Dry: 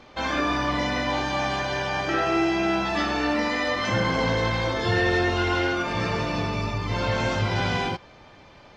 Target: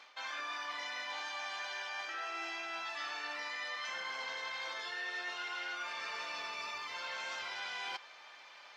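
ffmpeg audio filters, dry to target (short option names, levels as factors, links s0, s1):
-af "highpass=1200,areverse,acompressor=threshold=0.0112:ratio=6,areverse"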